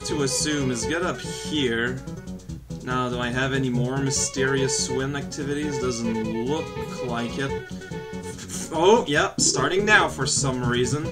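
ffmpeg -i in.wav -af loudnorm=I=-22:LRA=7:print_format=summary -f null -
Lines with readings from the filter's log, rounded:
Input Integrated:    -22.6 LUFS
Input True Peak:      -4.8 dBTP
Input LRA:             5.3 LU
Input Threshold:     -33.0 LUFS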